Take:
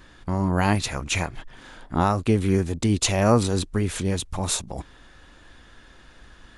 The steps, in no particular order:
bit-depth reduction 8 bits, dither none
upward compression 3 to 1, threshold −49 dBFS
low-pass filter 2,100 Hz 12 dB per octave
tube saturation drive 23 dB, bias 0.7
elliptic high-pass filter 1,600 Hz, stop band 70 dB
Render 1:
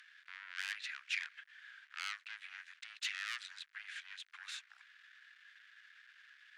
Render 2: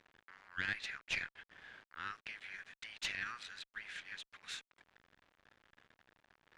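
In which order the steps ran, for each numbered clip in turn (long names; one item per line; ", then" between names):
bit-depth reduction, then low-pass filter, then upward compression, then tube saturation, then elliptic high-pass filter
upward compression, then elliptic high-pass filter, then bit-depth reduction, then low-pass filter, then tube saturation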